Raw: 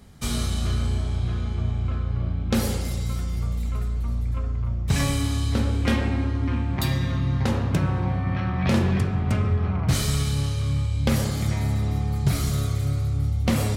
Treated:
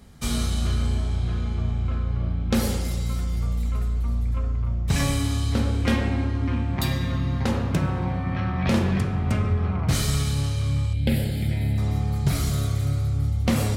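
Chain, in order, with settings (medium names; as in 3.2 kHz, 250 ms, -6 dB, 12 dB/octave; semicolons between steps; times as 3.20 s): 10.93–11.78 s: static phaser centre 2.7 kHz, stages 4; reverberation, pre-delay 3 ms, DRR 14 dB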